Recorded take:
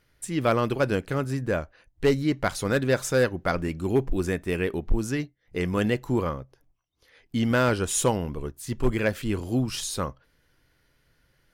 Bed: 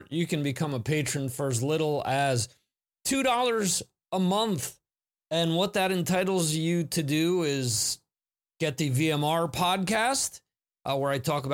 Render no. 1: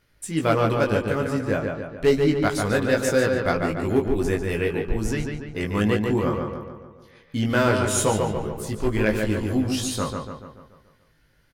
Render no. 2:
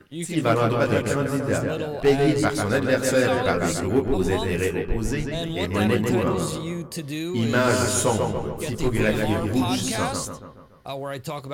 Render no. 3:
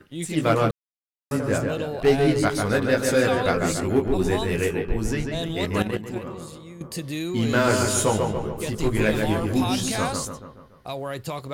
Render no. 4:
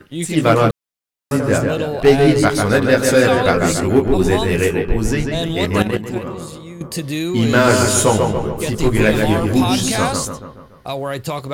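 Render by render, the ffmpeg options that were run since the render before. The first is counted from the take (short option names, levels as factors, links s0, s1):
-filter_complex "[0:a]asplit=2[s0][s1];[s1]adelay=19,volume=0.668[s2];[s0][s2]amix=inputs=2:normalize=0,asplit=2[s3][s4];[s4]adelay=144,lowpass=f=3600:p=1,volume=0.631,asplit=2[s5][s6];[s6]adelay=144,lowpass=f=3600:p=1,volume=0.54,asplit=2[s7][s8];[s8]adelay=144,lowpass=f=3600:p=1,volume=0.54,asplit=2[s9][s10];[s10]adelay=144,lowpass=f=3600:p=1,volume=0.54,asplit=2[s11][s12];[s12]adelay=144,lowpass=f=3600:p=1,volume=0.54,asplit=2[s13][s14];[s14]adelay=144,lowpass=f=3600:p=1,volume=0.54,asplit=2[s15][s16];[s16]adelay=144,lowpass=f=3600:p=1,volume=0.54[s17];[s5][s7][s9][s11][s13][s15][s17]amix=inputs=7:normalize=0[s18];[s3][s18]amix=inputs=2:normalize=0"
-filter_complex "[1:a]volume=0.631[s0];[0:a][s0]amix=inputs=2:normalize=0"
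-filter_complex "[0:a]asettb=1/sr,asplit=3[s0][s1][s2];[s0]atrim=end=2.034[s3];[s1]atrim=start=2.03:end=3.22,asetpts=PTS-STARTPTS,afade=t=in:d=0.004:c=qsin,afade=t=out:st=1.186:d=0.004:c=qsin,bandreject=f=7300:w=12[s4];[s2]atrim=start=3.216[s5];[s3][s4]acrossfade=d=0.004:c1=hsin:c2=qsin[s6];[s6][s5]acrossfade=d=0.004:c1=qsin:c2=hsin,asettb=1/sr,asplit=3[s7][s8][s9];[s7]atrim=end=5.824[s10];[s8]atrim=start=5.82:end=6.81,asetpts=PTS-STARTPTS,afade=t=in:d=0.004:c=qsin,afade=t=out:st=0.986:d=0.004:c=qsin,agate=range=0.251:threshold=0.112:ratio=16:release=100:detection=peak[s11];[s9]atrim=start=6.806[s12];[s10][s11]acrossfade=d=0.004:c1=hsin:c2=qsin[s13];[s13][s12]acrossfade=d=0.004:c1=qsin:c2=hsin,asplit=3[s14][s15][s16];[s14]atrim=end=0.71,asetpts=PTS-STARTPTS,afade=t=out:st=0.706:d=0.004:c=hsin[s17];[s15]atrim=start=0.71:end=1.31,asetpts=PTS-STARTPTS,volume=0[s18];[s16]atrim=start=1.31,asetpts=PTS-STARTPTS,afade=t=in:d=0.004:c=hsin[s19];[s17][s18][s19]concat=n=3:v=0:a=1"
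-af "volume=2.37,alimiter=limit=0.891:level=0:latency=1"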